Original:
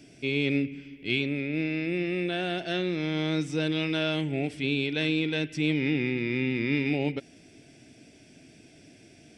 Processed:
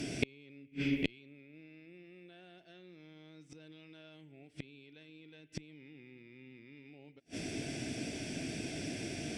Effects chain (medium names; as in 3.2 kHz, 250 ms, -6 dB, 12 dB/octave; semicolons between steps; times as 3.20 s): peak limiter -20 dBFS, peak gain reduction 5.5 dB; inverted gate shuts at -28 dBFS, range -39 dB; Chebyshev shaper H 6 -29 dB, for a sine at -25.5 dBFS; trim +13 dB